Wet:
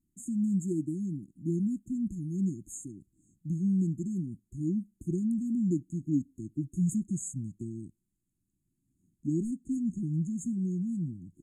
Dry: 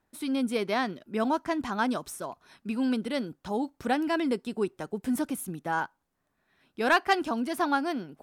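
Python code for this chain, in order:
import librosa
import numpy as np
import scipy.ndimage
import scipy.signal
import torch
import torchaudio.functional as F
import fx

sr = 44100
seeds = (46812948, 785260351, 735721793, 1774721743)

y = fx.speed_glide(x, sr, from_pct=79, to_pct=65)
y = fx.brickwall_bandstop(y, sr, low_hz=370.0, high_hz=6400.0)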